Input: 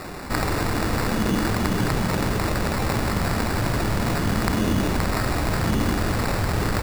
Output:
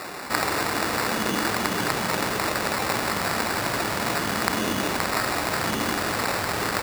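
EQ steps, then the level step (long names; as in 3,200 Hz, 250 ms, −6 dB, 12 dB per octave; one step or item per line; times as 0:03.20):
high-pass filter 650 Hz 6 dB per octave
+3.5 dB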